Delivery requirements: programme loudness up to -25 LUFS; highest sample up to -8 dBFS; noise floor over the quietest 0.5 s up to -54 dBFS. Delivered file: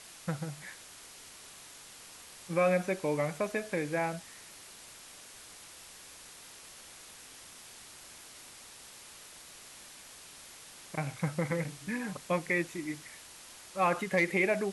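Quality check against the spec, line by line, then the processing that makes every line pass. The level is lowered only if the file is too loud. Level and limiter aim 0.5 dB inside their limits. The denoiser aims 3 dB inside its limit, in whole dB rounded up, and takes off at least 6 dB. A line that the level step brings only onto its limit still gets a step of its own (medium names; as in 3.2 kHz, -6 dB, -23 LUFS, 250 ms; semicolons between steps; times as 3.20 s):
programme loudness -32.5 LUFS: pass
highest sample -16.5 dBFS: pass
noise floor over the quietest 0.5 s -51 dBFS: fail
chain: noise reduction 6 dB, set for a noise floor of -51 dBFS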